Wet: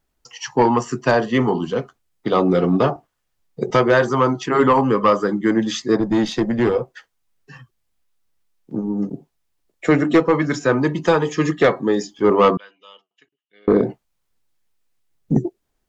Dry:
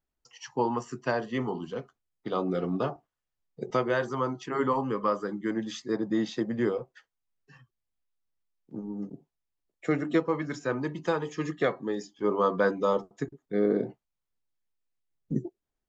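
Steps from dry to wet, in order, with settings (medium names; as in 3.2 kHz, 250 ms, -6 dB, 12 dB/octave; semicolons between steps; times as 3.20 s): 12.57–13.68 s: band-pass filter 2.9 kHz, Q 17; sine folder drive 4 dB, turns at -12.5 dBFS; 6.00–6.76 s: valve stage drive 16 dB, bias 0.4; trim +5.5 dB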